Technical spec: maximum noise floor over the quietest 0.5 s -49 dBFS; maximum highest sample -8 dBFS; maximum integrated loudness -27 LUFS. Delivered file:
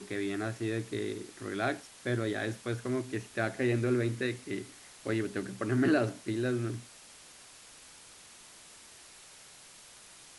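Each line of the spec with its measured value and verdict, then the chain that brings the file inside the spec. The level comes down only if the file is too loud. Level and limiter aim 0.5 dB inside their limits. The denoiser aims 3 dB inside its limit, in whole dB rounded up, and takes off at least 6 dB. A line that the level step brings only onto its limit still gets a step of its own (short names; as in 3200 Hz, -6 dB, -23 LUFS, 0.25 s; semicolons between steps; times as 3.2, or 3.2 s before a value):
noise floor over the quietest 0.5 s -54 dBFS: OK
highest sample -15.5 dBFS: OK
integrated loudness -33.0 LUFS: OK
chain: none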